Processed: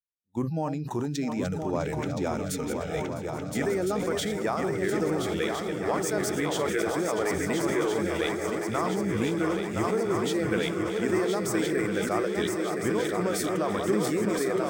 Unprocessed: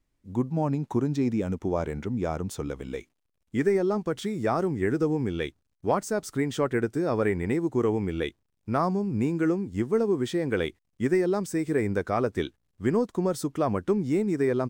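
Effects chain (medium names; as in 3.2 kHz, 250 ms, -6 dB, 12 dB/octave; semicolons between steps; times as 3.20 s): backward echo that repeats 327 ms, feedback 72%, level -9.5 dB; gate -33 dBFS, range -8 dB; tilt EQ +1.5 dB/octave; compression, threshold -26 dBFS, peak gain reduction 7 dB; spectral noise reduction 28 dB; shuffle delay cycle 1359 ms, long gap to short 3:1, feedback 58%, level -5.5 dB; decay stretcher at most 35 dB/s; trim +1.5 dB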